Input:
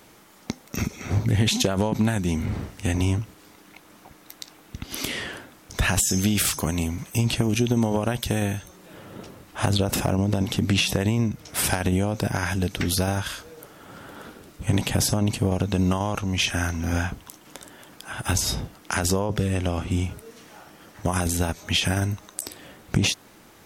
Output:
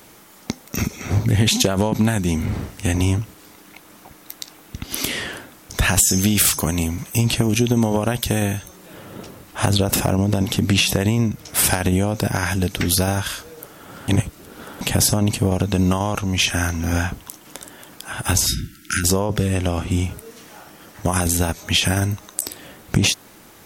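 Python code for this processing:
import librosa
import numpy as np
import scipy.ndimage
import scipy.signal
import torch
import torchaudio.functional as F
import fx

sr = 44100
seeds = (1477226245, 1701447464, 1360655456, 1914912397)

y = fx.brickwall_bandstop(x, sr, low_hz=370.0, high_hz=1300.0, at=(18.46, 19.04))
y = fx.edit(y, sr, fx.reverse_span(start_s=14.08, length_s=0.73), tone=tone)
y = fx.high_shelf(y, sr, hz=8500.0, db=6.5)
y = F.gain(torch.from_numpy(y), 4.0).numpy()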